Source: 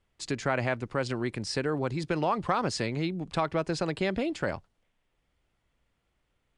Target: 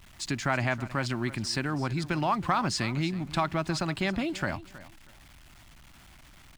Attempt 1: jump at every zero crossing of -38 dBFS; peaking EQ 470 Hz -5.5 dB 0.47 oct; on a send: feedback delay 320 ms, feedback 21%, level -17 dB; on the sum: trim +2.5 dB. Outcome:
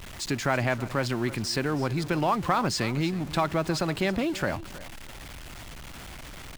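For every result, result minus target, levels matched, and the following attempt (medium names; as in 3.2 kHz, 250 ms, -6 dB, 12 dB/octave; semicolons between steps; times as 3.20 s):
jump at every zero crossing: distortion +11 dB; 500 Hz band +3.0 dB
jump at every zero crossing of -49.5 dBFS; peaking EQ 470 Hz -5.5 dB 0.47 oct; on a send: feedback delay 320 ms, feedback 21%, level -17 dB; on the sum: trim +2.5 dB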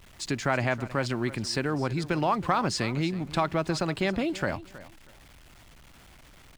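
500 Hz band +3.0 dB
jump at every zero crossing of -49.5 dBFS; peaking EQ 470 Hz -16.5 dB 0.47 oct; on a send: feedback delay 320 ms, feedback 21%, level -17 dB; on the sum: trim +2.5 dB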